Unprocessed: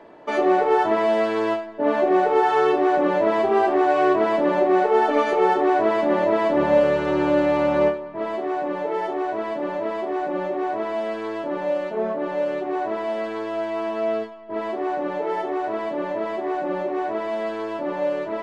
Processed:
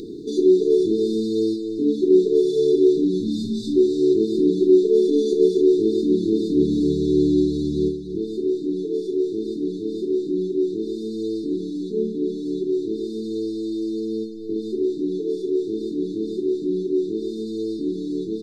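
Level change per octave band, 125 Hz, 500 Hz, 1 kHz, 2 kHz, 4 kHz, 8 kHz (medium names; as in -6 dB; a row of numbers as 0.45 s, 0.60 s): +6.5 dB, +0.5 dB, under -40 dB, under -40 dB, +1.0 dB, no reading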